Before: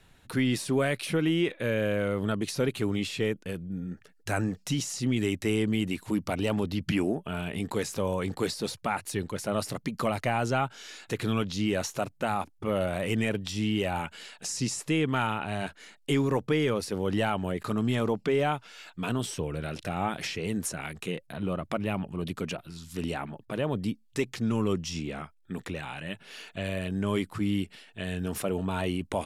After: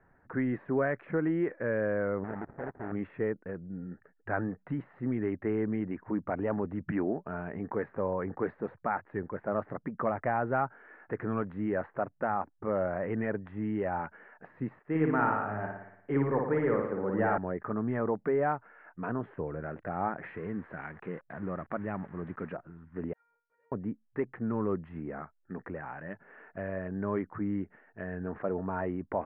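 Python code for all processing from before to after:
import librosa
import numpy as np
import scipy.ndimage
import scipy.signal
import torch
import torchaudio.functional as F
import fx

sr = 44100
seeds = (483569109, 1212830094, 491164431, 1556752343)

y = fx.chain(x, sr, fx.level_steps(step_db=17),
    fx.sample_hold(seeds[0], rate_hz=1100.0, jitter_pct=20), at=(2.24, 2.92))
y = fx.chain(y, sr, fx.room_flutter(wall_m=9.8, rt60_s=0.92),
    fx.band_widen(depth_pct=40), at=(14.79, 17.38))
y = fx.chain(y, sr, fx.crossing_spikes(level_db=-24.5),
    fx.dynamic_eq(hz=580.0, q=1.0, threshold_db=-42.0, ratio=4.0, max_db=-4), at=(20.25, 22.53))
y = fx.chain(y, sr, fx.pre_emphasis(coefficient=0.97),
    fx.comb_fb(f0_hz=470.0, decay_s=0.46, harmonics='all', damping=0.0, mix_pct=100),
    fx.transient(attack_db=4, sustain_db=10), at=(23.13, 23.72))
y = fx.wiener(y, sr, points=9)
y = scipy.signal.sosfilt(scipy.signal.ellip(4, 1.0, 70, 1800.0, 'lowpass', fs=sr, output='sos'), y)
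y = fx.low_shelf(y, sr, hz=190.0, db=-8.5)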